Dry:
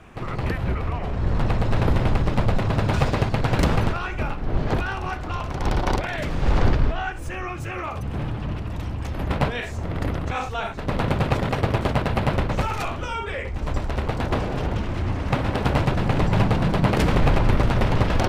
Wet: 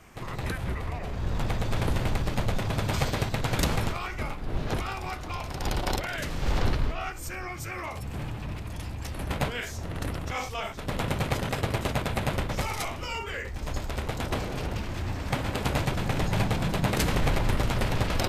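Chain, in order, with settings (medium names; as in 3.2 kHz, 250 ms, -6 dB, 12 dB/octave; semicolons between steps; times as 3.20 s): formant shift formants -2 st; pre-emphasis filter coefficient 0.8; trim +7 dB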